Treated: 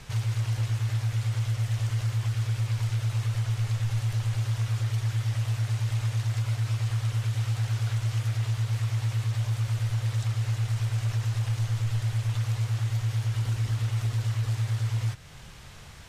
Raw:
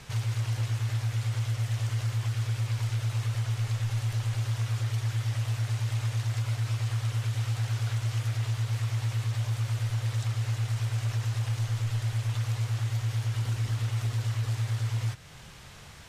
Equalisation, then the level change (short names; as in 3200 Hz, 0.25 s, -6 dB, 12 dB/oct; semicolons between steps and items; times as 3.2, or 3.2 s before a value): low shelf 61 Hz +8 dB; 0.0 dB